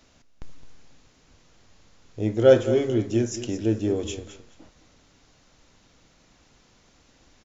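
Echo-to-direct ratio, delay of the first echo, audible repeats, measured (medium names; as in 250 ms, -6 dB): -13.0 dB, 214 ms, 2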